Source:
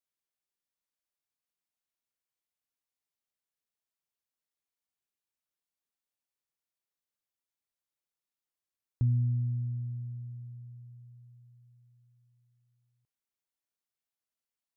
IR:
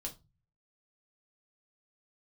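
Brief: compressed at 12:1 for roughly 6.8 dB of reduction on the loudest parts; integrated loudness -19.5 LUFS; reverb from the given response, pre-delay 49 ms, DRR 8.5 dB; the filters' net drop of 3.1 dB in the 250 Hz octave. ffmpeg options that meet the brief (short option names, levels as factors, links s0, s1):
-filter_complex "[0:a]equalizer=f=250:t=o:g=-8,acompressor=threshold=0.0251:ratio=12,asplit=2[s0][s1];[1:a]atrim=start_sample=2205,adelay=49[s2];[s1][s2]afir=irnorm=-1:irlink=0,volume=0.473[s3];[s0][s3]amix=inputs=2:normalize=0,volume=10.6"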